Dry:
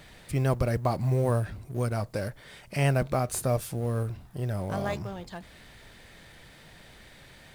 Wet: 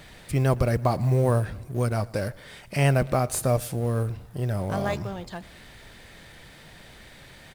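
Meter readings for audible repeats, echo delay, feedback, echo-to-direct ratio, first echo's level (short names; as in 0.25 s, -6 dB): 2, 0.116 s, 50%, -22.0 dB, -23.0 dB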